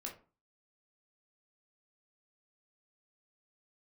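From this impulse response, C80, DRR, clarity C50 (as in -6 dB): 16.0 dB, -1.0 dB, 9.5 dB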